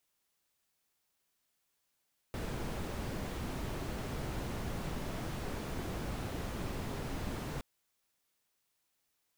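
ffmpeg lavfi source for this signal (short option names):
-f lavfi -i "anoisesrc=c=brown:a=0.0589:d=5.27:r=44100:seed=1"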